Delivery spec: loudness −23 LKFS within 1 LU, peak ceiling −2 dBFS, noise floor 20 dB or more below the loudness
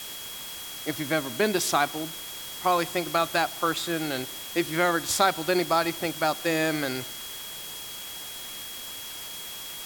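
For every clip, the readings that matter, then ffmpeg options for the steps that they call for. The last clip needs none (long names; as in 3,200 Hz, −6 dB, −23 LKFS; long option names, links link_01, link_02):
interfering tone 3,300 Hz; level of the tone −41 dBFS; background noise floor −39 dBFS; target noise floor −48 dBFS; integrated loudness −27.5 LKFS; sample peak −6.5 dBFS; target loudness −23.0 LKFS
→ -af "bandreject=frequency=3300:width=30"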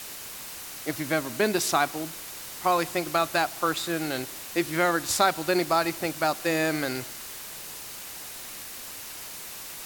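interfering tone none found; background noise floor −40 dBFS; target noise floor −48 dBFS
→ -af "afftdn=noise_reduction=8:noise_floor=-40"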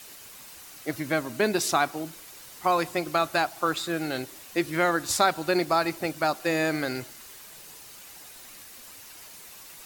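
background noise floor −47 dBFS; integrated loudness −26.5 LKFS; sample peak −6.5 dBFS; target loudness −23.0 LKFS
→ -af "volume=3.5dB"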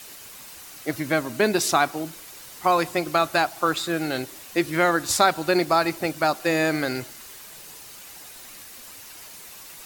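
integrated loudness −23.0 LKFS; sample peak −3.0 dBFS; background noise floor −43 dBFS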